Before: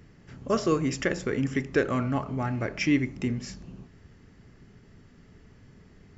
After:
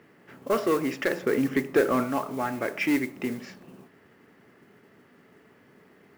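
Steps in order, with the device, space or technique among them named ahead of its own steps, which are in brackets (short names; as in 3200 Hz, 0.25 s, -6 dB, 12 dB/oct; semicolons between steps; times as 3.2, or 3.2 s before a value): carbon microphone (BPF 330–2600 Hz; soft clip -21 dBFS, distortion -14 dB; modulation noise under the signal 20 dB); 1.23–2.04 low shelf 460 Hz +5.5 dB; gain +5 dB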